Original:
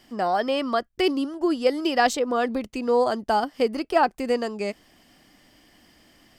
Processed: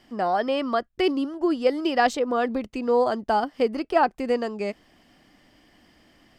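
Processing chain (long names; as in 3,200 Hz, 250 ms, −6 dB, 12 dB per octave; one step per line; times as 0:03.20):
high-shelf EQ 5,500 Hz −10.5 dB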